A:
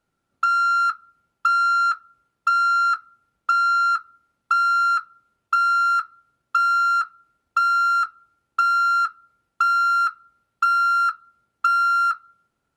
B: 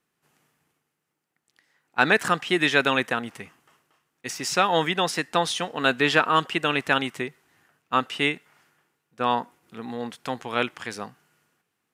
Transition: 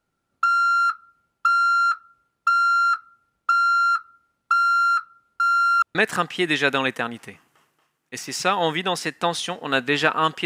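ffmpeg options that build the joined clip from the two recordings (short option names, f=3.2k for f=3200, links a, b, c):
-filter_complex "[0:a]apad=whole_dur=10.45,atrim=end=10.45,asplit=2[a][b];[a]atrim=end=5.402[c];[b]atrim=start=5.398:end=5.952,asetpts=PTS-STARTPTS,areverse[d];[1:a]atrim=start=2.068:end=6.57[e];[c][d]acrossfade=d=0.004:c1=hsin:c2=hsin[f];[f][e]acrossfade=d=0.004:c1=hsin:c2=hsin"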